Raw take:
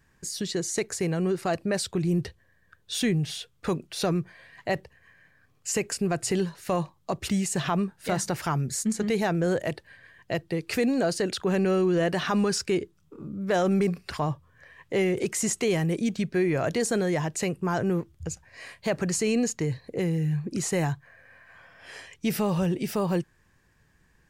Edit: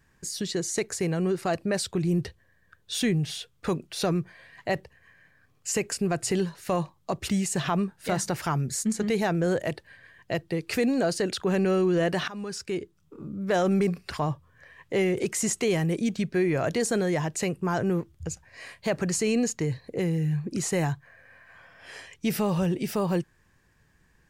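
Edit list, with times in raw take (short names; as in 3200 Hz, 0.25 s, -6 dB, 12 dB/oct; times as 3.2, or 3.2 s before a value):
12.28–13.2 fade in linear, from -17 dB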